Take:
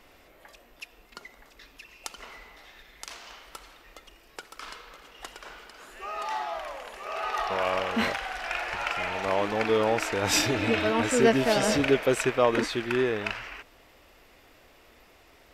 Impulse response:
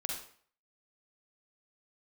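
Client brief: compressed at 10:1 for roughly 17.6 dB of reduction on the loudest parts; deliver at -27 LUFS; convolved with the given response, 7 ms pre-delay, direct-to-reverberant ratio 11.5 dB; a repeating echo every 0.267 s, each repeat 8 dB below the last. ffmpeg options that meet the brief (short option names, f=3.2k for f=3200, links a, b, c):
-filter_complex "[0:a]acompressor=threshold=-34dB:ratio=10,aecho=1:1:267|534|801|1068|1335:0.398|0.159|0.0637|0.0255|0.0102,asplit=2[a][b];[1:a]atrim=start_sample=2205,adelay=7[c];[b][c]afir=irnorm=-1:irlink=0,volume=-13.5dB[d];[a][d]amix=inputs=2:normalize=0,volume=11.5dB"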